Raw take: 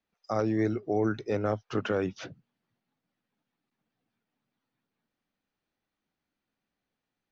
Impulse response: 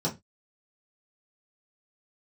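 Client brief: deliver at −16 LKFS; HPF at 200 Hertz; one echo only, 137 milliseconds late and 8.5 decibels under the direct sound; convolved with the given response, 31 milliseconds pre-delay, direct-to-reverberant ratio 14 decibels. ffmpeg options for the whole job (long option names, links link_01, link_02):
-filter_complex "[0:a]highpass=200,aecho=1:1:137:0.376,asplit=2[link_01][link_02];[1:a]atrim=start_sample=2205,adelay=31[link_03];[link_02][link_03]afir=irnorm=-1:irlink=0,volume=-22dB[link_04];[link_01][link_04]amix=inputs=2:normalize=0,volume=13.5dB"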